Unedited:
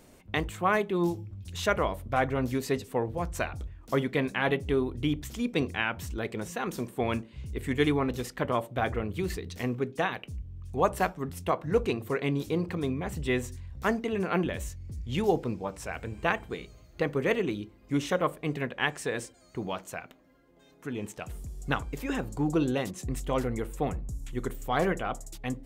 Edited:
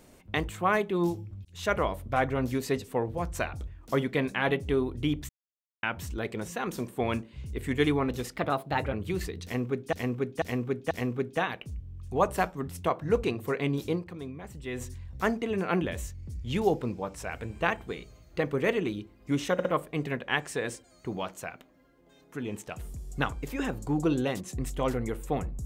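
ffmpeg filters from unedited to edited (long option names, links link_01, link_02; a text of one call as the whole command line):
ffmpeg -i in.wav -filter_complex "[0:a]asplit=13[link_01][link_02][link_03][link_04][link_05][link_06][link_07][link_08][link_09][link_10][link_11][link_12][link_13];[link_01]atrim=end=1.45,asetpts=PTS-STARTPTS,afade=type=out:start_time=1.446:duration=0.004:curve=hsin[link_14];[link_02]atrim=start=1.45:end=5.29,asetpts=PTS-STARTPTS,afade=type=in:duration=0.29,afade=type=out:start_time=3.836:duration=0.004:curve=hsin[link_15];[link_03]atrim=start=5.29:end=5.83,asetpts=PTS-STARTPTS,volume=0[link_16];[link_04]atrim=start=5.83:end=8.364,asetpts=PTS-STARTPTS,afade=type=in:duration=0.004:curve=hsin[link_17];[link_05]atrim=start=8.36:end=9.02,asetpts=PTS-STARTPTS,asetrate=51156,aresample=44100,atrim=end_sample=25091,asetpts=PTS-STARTPTS[link_18];[link_06]atrim=start=9.016:end=10.022[link_19];[link_07]atrim=start=9.528:end=10.022[link_20];[link_08]atrim=start=9.528:end=10.022[link_21];[link_09]atrim=start=9.528:end=12.68,asetpts=PTS-STARTPTS,afade=type=out:start_time=3.032:duration=0.12:curve=qua:silence=0.354813[link_22];[link_10]atrim=start=12.68:end=13.32,asetpts=PTS-STARTPTS,volume=-9dB[link_23];[link_11]atrim=start=13.32:end=18.212,asetpts=PTS-STARTPTS,afade=type=in:duration=0.12:curve=qua:silence=0.354813[link_24];[link_12]atrim=start=18.148:end=18.212[link_25];[link_13]atrim=start=18.148[link_26];[link_14][link_15][link_16][link_17]concat=n=4:v=0:a=1[link_27];[link_27][link_18]acrossfade=duration=0.004:curve1=hsin:curve2=hsin[link_28];[link_28][link_19]acrossfade=duration=0.004:curve1=hsin:curve2=hsin[link_29];[link_29][link_20]acrossfade=duration=0.004:curve1=hsin:curve2=hsin[link_30];[link_30][link_21]acrossfade=duration=0.004:curve1=hsin:curve2=hsin[link_31];[link_22][link_23][link_24]concat=n=3:v=0:a=1[link_32];[link_31][link_32]acrossfade=duration=0.004:curve1=hsin:curve2=hsin[link_33];[link_33][link_25]acrossfade=duration=0.004:curve1=hsin:curve2=hsin[link_34];[link_34][link_26]acrossfade=duration=0.004:curve1=hsin:curve2=hsin" out.wav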